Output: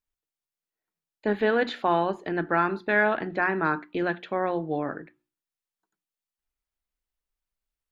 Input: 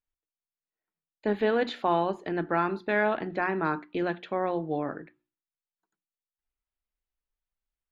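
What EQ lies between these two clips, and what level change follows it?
dynamic bell 1.6 kHz, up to +5 dB, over -44 dBFS, Q 2.6; +1.5 dB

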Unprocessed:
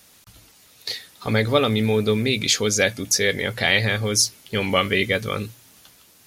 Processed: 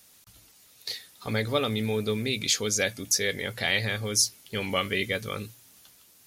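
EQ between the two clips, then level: treble shelf 4.9 kHz +6 dB; -8.0 dB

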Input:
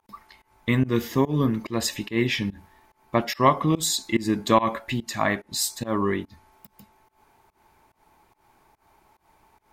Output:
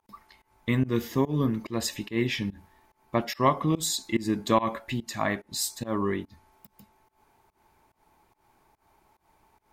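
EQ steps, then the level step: tilt shelf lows +5 dB, about 1.4 kHz; treble shelf 2 kHz +9.5 dB; -8.0 dB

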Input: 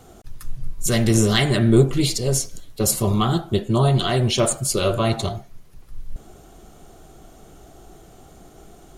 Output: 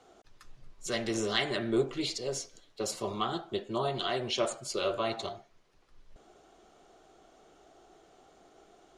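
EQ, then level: three-band isolator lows -17 dB, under 300 Hz, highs -24 dB, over 6.7 kHz; -8.5 dB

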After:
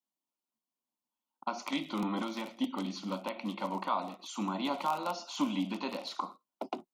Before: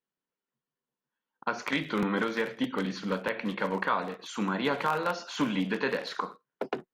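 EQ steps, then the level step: bass shelf 120 Hz -11.5 dB; static phaser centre 450 Hz, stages 6; 0.0 dB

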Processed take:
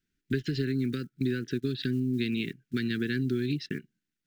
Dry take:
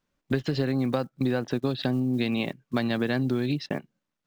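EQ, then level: elliptic band-stop 400–1500 Hz, stop band 40 dB; -2.0 dB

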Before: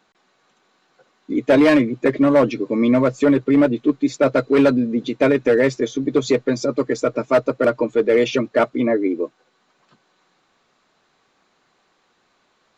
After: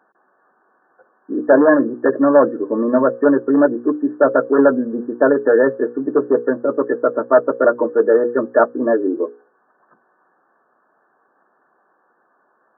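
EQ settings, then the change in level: high-pass 310 Hz 12 dB/octave; brick-wall FIR low-pass 1.8 kHz; hum notches 60/120/180/240/300/360/420/480/540 Hz; +4.5 dB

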